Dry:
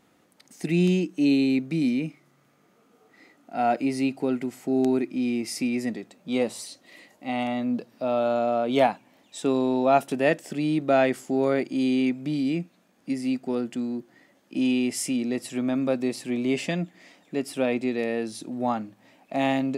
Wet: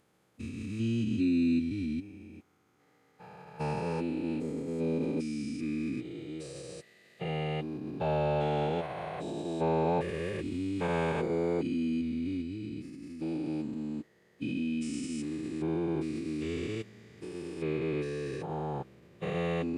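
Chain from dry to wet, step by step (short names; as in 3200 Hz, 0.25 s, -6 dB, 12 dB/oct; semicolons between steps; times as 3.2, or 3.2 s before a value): stepped spectrum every 0.4 s; formant-preserving pitch shift -8 st; gain -4 dB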